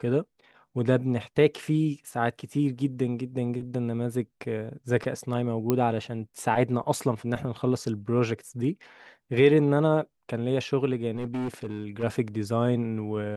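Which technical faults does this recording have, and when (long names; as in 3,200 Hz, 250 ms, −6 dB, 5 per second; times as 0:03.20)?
0:05.70: click −11 dBFS
0:11.15–0:12.04: clipping −27 dBFS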